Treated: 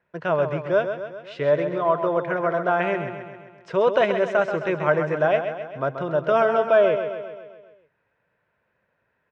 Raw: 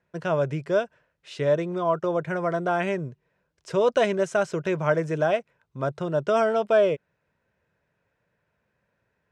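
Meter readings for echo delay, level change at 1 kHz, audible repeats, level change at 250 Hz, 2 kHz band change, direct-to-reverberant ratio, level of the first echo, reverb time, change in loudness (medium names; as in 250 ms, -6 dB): 132 ms, +4.0 dB, 6, 0.0 dB, +4.5 dB, no reverb, -8.5 dB, no reverb, +2.5 dB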